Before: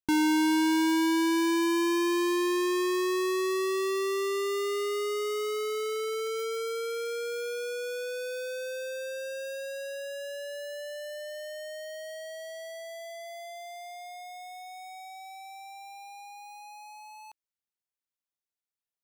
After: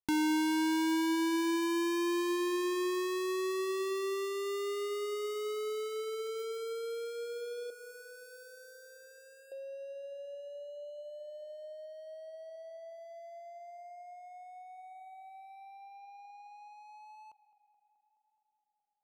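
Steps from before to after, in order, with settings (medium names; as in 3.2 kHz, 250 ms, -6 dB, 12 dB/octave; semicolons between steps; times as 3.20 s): local Wiener filter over 25 samples; 7.70–9.52 s: static phaser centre 1.4 kHz, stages 4; tape echo 212 ms, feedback 79%, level -18.5 dB, low-pass 2.5 kHz; tape noise reduction on one side only encoder only; trim -5 dB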